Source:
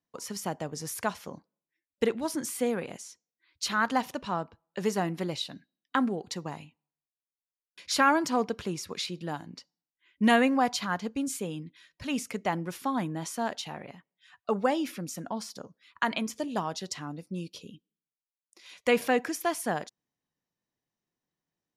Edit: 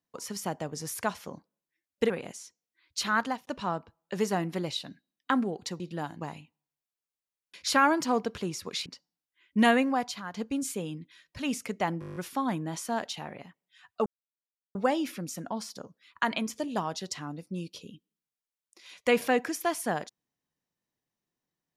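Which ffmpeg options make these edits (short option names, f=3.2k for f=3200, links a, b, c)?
-filter_complex "[0:a]asplit=16[a][b][c][d][e][f][g][h][i][j][k][l][m][n][o][p];[a]atrim=end=2.102[q];[b]atrim=start=2.748:end=4.12,asetpts=PTS-STARTPTS,afade=t=out:st=1.092:d=0.28[r];[c]atrim=start=4.12:end=6.452,asetpts=PTS-STARTPTS,afade=t=in:d=0.004:c=hsin[s];[d]atrim=start=9.098:end=9.512[t];[e]atrim=start=6.448:end=9.102[u];[f]atrim=start=9.508:end=10.99,asetpts=PTS-STARTPTS,afade=t=out:st=0.822:d=0.66:silence=0.281838[v];[g]atrim=start=10.99:end=12.672,asetpts=PTS-STARTPTS,afade=t=in:d=0.004:c=hsin:silence=0.281838[w];[h]atrim=start=12.648:end=12.672[x];[i]atrim=start=12.648:end=12.672[y];[j]atrim=start=12.648:end=12.672[z];[k]atrim=start=12.648:end=12.672[aa];[l]atrim=start=12.648:end=12.672[ab];[m]atrim=start=12.648:end=12.672[ac];[n]atrim=start=12.648:end=12.672[ad];[o]atrim=start=12.648:end=14.55,asetpts=PTS-STARTPTS,afade=t=out:st=1.898:d=0.004:c=hsin,apad=pad_dur=0.69[ae];[p]atrim=start=14.55,asetpts=PTS-STARTPTS,afade=t=in:d=0.004:c=hsin[af];[r][s]concat=n=2:v=0:a=1[ag];[q][ag]acrossfade=d=0.004:c1=hsin:c2=hsin[ah];[ah][t]acrossfade=d=0.004:c1=hsin:c2=hsin[ai];[ai][u]acrossfade=d=0.004:c1=hsin:c2=hsin[aj];[v][w]concat=n=2:v=0:a=1[ak];[aj][ak]acrossfade=d=0.004:c1=hsin:c2=hsin[al];[al][x]acrossfade=d=0.004:c1=hsin:c2=hsin[am];[am][y]acrossfade=d=0.004:c1=hsin:c2=hsin[an];[an][z]acrossfade=d=0.004:c1=hsin:c2=hsin[ao];[ao][aa]acrossfade=d=0.004:c1=hsin:c2=hsin[ap];[ap][ab]acrossfade=d=0.004:c1=hsin:c2=hsin[aq];[aq][ac]acrossfade=d=0.004:c1=hsin:c2=hsin[ar];[ar][ad]acrossfade=d=0.004:c1=hsin:c2=hsin[as];[ae][af]concat=n=2:v=0:a=1[at];[as][at]acrossfade=d=0.004:c1=hsin:c2=hsin"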